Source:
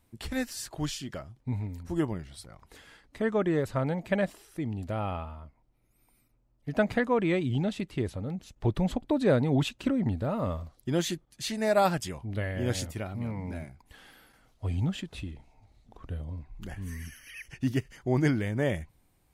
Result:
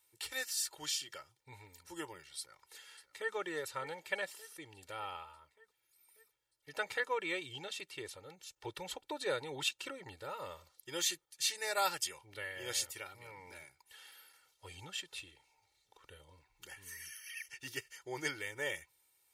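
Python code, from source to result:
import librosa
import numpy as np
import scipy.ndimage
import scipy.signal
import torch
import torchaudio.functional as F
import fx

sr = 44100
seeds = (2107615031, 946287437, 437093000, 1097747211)

y = fx.echo_throw(x, sr, start_s=2.38, length_s=0.96, ms=590, feedback_pct=65, wet_db=-15.5)
y = fx.lowpass(y, sr, hz=3600.0, slope=6)
y = np.diff(y, prepend=0.0)
y = y + 0.96 * np.pad(y, (int(2.2 * sr / 1000.0), 0))[:len(y)]
y = y * 10.0 ** (7.0 / 20.0)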